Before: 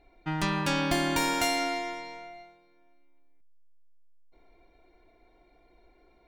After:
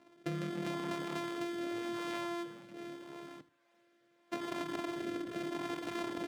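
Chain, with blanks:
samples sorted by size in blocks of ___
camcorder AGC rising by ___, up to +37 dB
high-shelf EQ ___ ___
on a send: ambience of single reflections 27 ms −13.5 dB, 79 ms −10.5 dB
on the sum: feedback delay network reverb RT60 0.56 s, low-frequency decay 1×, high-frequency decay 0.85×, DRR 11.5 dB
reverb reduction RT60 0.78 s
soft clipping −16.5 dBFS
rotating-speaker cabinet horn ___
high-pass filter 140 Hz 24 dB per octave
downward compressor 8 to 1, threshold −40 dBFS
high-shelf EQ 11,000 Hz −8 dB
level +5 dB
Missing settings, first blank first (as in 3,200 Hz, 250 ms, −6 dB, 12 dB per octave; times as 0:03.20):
128 samples, 20 dB per second, 4,200 Hz, −8.5 dB, 0.8 Hz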